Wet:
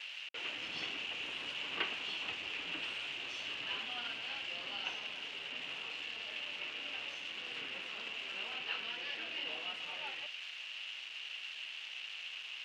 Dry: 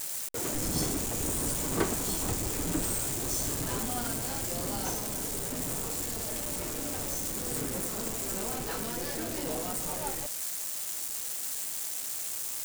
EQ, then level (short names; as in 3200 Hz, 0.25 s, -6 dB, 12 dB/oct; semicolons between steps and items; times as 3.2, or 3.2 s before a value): band-pass 2800 Hz, Q 8.3; air absorption 250 m; +18.0 dB